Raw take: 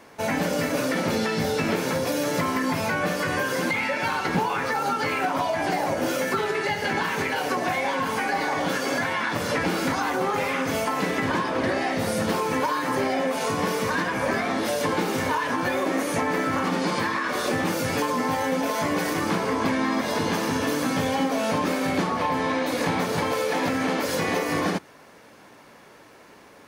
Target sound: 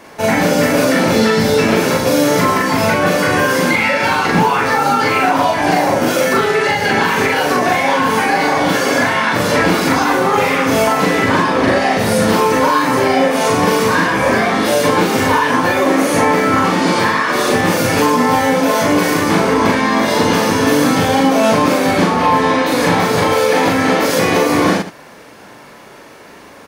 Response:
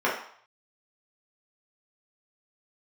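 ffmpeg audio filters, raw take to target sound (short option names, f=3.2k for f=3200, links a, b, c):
-af "aecho=1:1:40.82|116.6:0.891|0.282,volume=8.5dB"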